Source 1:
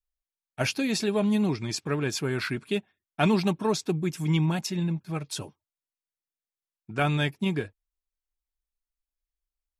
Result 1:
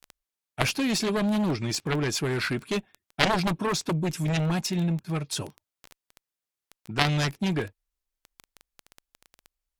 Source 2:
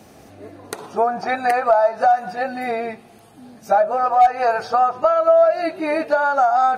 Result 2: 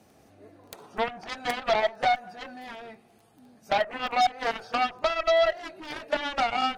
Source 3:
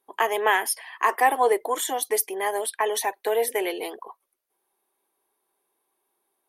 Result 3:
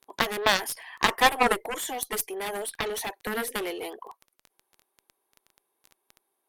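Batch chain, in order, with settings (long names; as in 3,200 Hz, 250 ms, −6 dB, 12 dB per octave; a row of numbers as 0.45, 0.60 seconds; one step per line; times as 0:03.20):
surface crackle 11 per second −31 dBFS
harmonic generator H 4 −28 dB, 7 −12 dB, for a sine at −5 dBFS
loudness normalisation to −27 LKFS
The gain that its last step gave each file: +6.5, −10.0, 0.0 decibels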